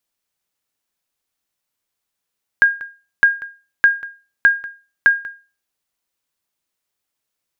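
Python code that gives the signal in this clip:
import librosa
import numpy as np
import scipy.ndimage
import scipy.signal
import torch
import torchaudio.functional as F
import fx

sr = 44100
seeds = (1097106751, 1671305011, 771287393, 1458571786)

y = fx.sonar_ping(sr, hz=1620.0, decay_s=0.33, every_s=0.61, pings=5, echo_s=0.19, echo_db=-19.5, level_db=-3.5)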